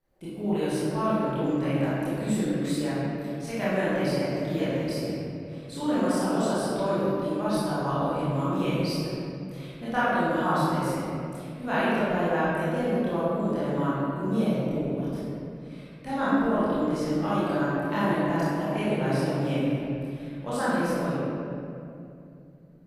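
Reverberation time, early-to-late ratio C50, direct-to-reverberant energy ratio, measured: 2.7 s, -5.5 dB, -12.0 dB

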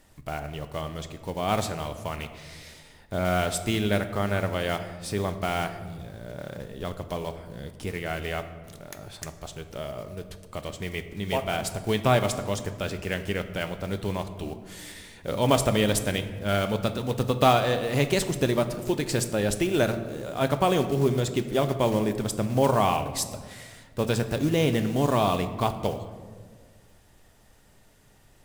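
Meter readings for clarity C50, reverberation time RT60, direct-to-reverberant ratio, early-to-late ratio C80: 11.5 dB, 1.6 s, 8.5 dB, 12.5 dB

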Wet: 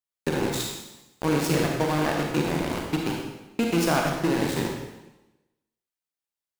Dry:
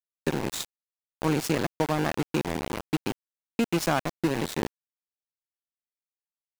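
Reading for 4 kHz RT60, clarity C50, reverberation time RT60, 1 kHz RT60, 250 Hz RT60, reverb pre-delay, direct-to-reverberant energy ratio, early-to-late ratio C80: 0.95 s, 1.5 dB, 1.0 s, 1.0 s, 1.1 s, 31 ms, -0.5 dB, 4.0 dB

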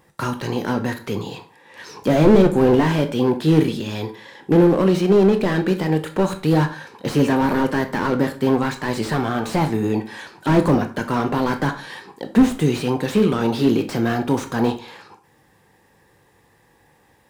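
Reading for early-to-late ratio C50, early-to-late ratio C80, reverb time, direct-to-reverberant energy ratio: 13.0 dB, 17.5 dB, not exponential, 7.0 dB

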